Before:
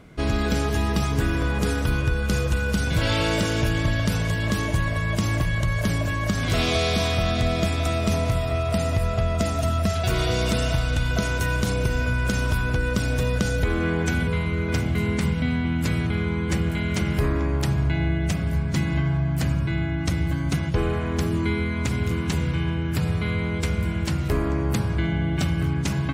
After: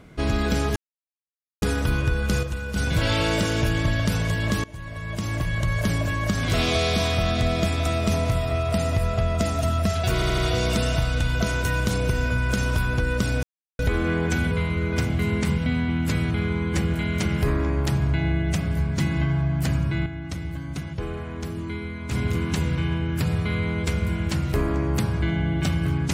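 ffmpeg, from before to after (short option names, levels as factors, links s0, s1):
-filter_complex "[0:a]asplit=13[s0][s1][s2][s3][s4][s5][s6][s7][s8][s9][s10][s11][s12];[s0]atrim=end=0.76,asetpts=PTS-STARTPTS,afade=t=out:st=0.756:d=0.004:c=hsin[s13];[s1]atrim=start=0.76:end=1.62,asetpts=PTS-STARTPTS,volume=0[s14];[s2]atrim=start=1.62:end=2.432,asetpts=PTS-STARTPTS,afade=t=in:d=0.004:c=hsin[s15];[s3]atrim=start=2.428:end=2.762,asetpts=PTS-STARTPTS,volume=0.473[s16];[s4]atrim=start=2.758:end=4.64,asetpts=PTS-STARTPTS,afade=t=out:st=1.878:d=0.004:c=hsin:silence=0.0794328[s17];[s5]atrim=start=4.64:end=10.222,asetpts=PTS-STARTPTS,afade=t=in:d=1.09:silence=0.0794328[s18];[s6]atrim=start=10.138:end=10.222[s19];[s7]atrim=start=10.138:end=10.222[s20];[s8]atrim=start=10.138:end=13.19,asetpts=PTS-STARTPTS,afade=t=out:st=3.048:d=0.004:c=hsin[s21];[s9]atrim=start=13.19:end=13.55,asetpts=PTS-STARTPTS,volume=0[s22];[s10]atrim=start=13.55:end=19.822,asetpts=PTS-STARTPTS,afade=t=in:d=0.004:c=hsin[s23];[s11]atrim=start=19.818:end=21.872,asetpts=PTS-STARTPTS,volume=0.422[s24];[s12]atrim=start=21.868[s25];[s13][s14][s15]concat=n=3:v=0:a=1[s26];[s26][s16]acrossfade=d=0.004:c1=hsin:c2=hsin[s27];[s17][s18]concat=n=2:v=0:a=1[s28];[s27][s28]acrossfade=d=0.004:c1=hsin:c2=hsin[s29];[s29][s19]acrossfade=d=0.004:c1=hsin:c2=hsin[s30];[s30][s20]acrossfade=d=0.004:c1=hsin:c2=hsin[s31];[s21][s22][s23]concat=n=3:v=0:a=1[s32];[s31][s32]acrossfade=d=0.004:c1=hsin:c2=hsin[s33];[s33][s24]acrossfade=d=0.004:c1=hsin:c2=hsin[s34];[s34][s25]acrossfade=d=0.004:c1=hsin:c2=hsin"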